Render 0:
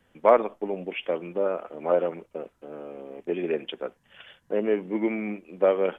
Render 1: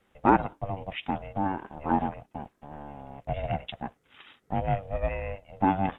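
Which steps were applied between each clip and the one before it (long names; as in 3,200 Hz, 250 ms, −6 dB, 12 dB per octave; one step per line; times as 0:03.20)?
ring modulation 290 Hz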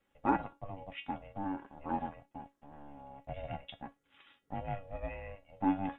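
tuned comb filter 280 Hz, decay 0.2 s, harmonics all, mix 80%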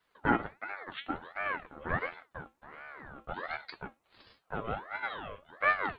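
ring modulator whose carrier an LFO sweeps 1,000 Hz, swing 50%, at 1.4 Hz
level +5.5 dB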